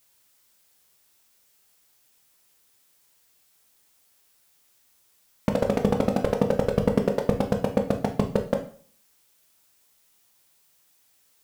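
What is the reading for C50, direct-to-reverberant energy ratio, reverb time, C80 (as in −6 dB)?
10.5 dB, 4.0 dB, 0.50 s, 15.0 dB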